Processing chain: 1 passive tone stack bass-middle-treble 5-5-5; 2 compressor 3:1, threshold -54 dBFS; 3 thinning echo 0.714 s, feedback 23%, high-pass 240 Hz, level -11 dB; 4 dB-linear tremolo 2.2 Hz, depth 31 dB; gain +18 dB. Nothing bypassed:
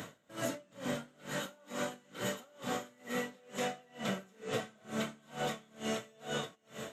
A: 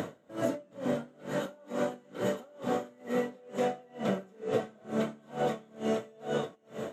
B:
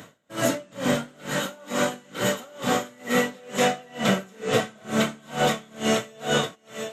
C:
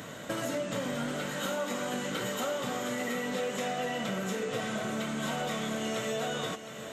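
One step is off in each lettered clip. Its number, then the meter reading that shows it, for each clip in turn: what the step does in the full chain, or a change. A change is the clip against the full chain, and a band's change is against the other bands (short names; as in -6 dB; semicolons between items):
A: 1, 8 kHz band -10.0 dB; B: 2, mean gain reduction 12.5 dB; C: 4, crest factor change -6.5 dB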